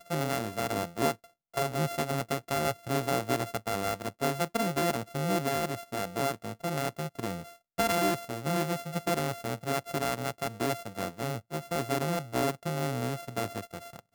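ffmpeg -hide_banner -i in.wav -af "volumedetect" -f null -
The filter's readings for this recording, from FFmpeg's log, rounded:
mean_volume: -31.9 dB
max_volume: -13.8 dB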